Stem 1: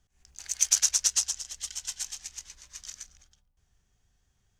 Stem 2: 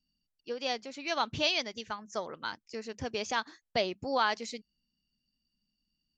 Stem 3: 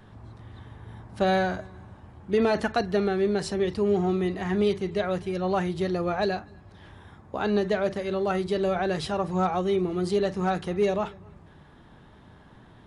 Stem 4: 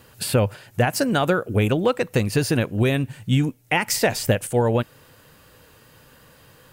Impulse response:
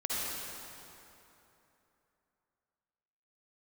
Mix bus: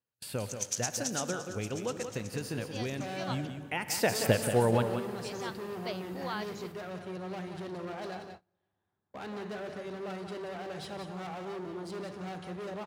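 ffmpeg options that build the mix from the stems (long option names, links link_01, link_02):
-filter_complex "[0:a]volume=-12dB,asplit=2[link_01][link_02];[link_02]volume=-20dB[link_03];[1:a]adelay=2100,volume=-9.5dB,asplit=3[link_04][link_05][link_06];[link_04]atrim=end=3.47,asetpts=PTS-STARTPTS,afade=type=out:start_time=3.466:duration=0.004:curve=hsin[link_07];[link_05]atrim=start=3.47:end=5.18,asetpts=PTS-STARTPTS,volume=0[link_08];[link_06]atrim=start=5.18,asetpts=PTS-STARTPTS,afade=type=in:duration=0.004:curve=hsin[link_09];[link_07][link_08][link_09]concat=n=3:v=0:a=1[link_10];[2:a]asoftclip=type=hard:threshold=-29dB,adelay=1800,volume=-10.5dB,asplit=3[link_11][link_12][link_13];[link_12]volume=-15dB[link_14];[link_13]volume=-6.5dB[link_15];[3:a]volume=-7dB,afade=type=in:start_time=3.68:duration=0.55:silence=0.316228,asplit=3[link_16][link_17][link_18];[link_17]volume=-16dB[link_19];[link_18]volume=-7dB[link_20];[4:a]atrim=start_sample=2205[link_21];[link_03][link_14][link_19]amix=inputs=3:normalize=0[link_22];[link_22][link_21]afir=irnorm=-1:irlink=0[link_23];[link_15][link_20]amix=inputs=2:normalize=0,aecho=0:1:180:1[link_24];[link_01][link_10][link_11][link_16][link_23][link_24]amix=inputs=6:normalize=0,highpass=100,agate=range=-27dB:threshold=-47dB:ratio=16:detection=peak"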